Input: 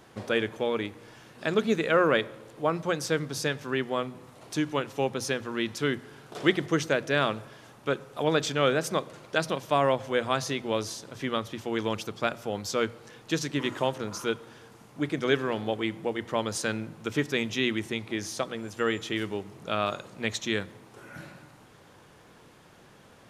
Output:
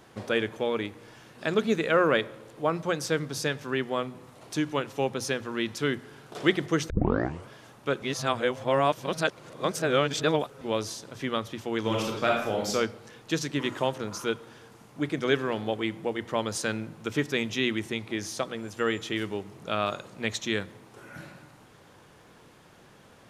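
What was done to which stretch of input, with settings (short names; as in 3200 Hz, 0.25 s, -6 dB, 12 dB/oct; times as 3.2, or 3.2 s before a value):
6.9 tape start 0.60 s
8.02–10.61 reverse
11.8–12.7 reverb throw, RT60 0.81 s, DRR -2 dB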